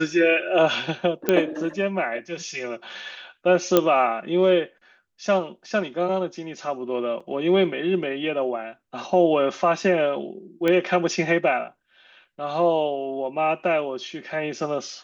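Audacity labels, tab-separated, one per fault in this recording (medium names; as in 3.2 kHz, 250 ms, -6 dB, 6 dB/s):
1.290000	1.290000	pop -6 dBFS
3.770000	3.770000	pop -3 dBFS
7.200000	7.210000	dropout 5.2 ms
10.680000	10.680000	pop -11 dBFS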